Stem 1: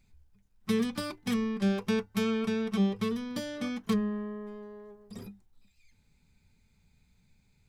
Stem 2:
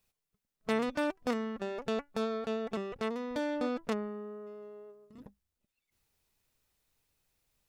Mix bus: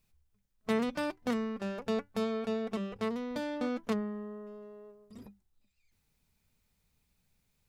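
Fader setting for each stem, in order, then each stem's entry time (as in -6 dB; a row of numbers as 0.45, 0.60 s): -11.0, -1.5 dB; 0.00, 0.00 s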